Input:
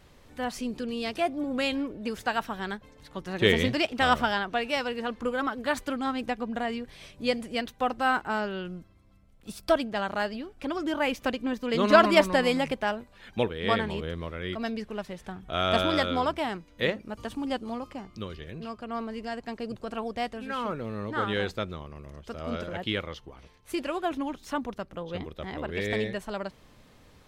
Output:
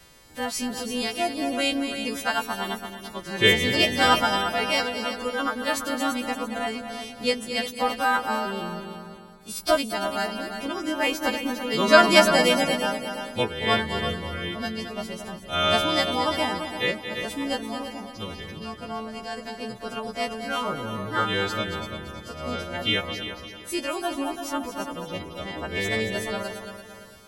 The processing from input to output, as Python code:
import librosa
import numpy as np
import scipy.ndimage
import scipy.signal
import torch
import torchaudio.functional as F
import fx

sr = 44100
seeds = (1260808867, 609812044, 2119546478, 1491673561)

y = fx.freq_snap(x, sr, grid_st=2)
y = fx.echo_heads(y, sr, ms=113, heads='second and third', feedback_pct=46, wet_db=-9.0)
y = fx.am_noise(y, sr, seeds[0], hz=5.7, depth_pct=50)
y = F.gain(torch.from_numpy(y), 4.5).numpy()